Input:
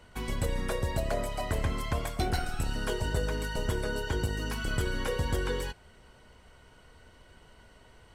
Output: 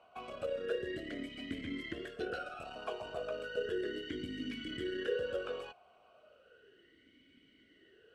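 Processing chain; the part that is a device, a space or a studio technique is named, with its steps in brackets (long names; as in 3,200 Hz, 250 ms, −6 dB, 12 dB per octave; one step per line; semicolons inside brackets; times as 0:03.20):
talk box (tube saturation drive 21 dB, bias 0.4; formant filter swept between two vowels a-i 0.34 Hz)
level +8 dB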